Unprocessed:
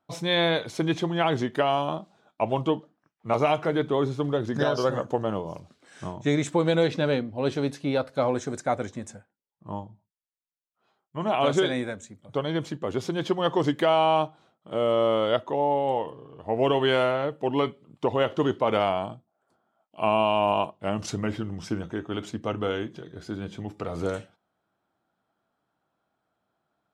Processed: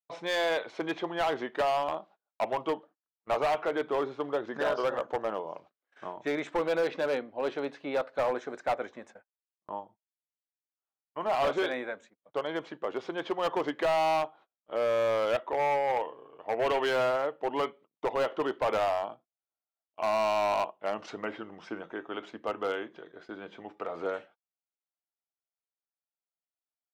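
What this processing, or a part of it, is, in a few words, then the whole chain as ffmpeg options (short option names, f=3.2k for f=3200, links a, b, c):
walkie-talkie: -filter_complex "[0:a]highpass=490,lowpass=2.4k,asoftclip=type=hard:threshold=-23dB,agate=range=-30dB:threshold=-52dB:ratio=16:detection=peak,asettb=1/sr,asplit=3[a][b][c];[a]atrim=end=15.274[d];[b]atrim=start=15.27:end=16.89,asetpts=PTS-STARTPTS,afade=t=in:d=0.004:c=qsin,afade=t=out:st=1.616:d=0.004:c=qsin,equalizer=f=2.3k:w=2.8:g=5.5[e];[c]atrim=start=16.886[f];[d][e]acrossfade=d=0.004:c1=hsin:c2=qsin[g];[g][f]acrossfade=d=0.004:c1=qsin:c2=hsin"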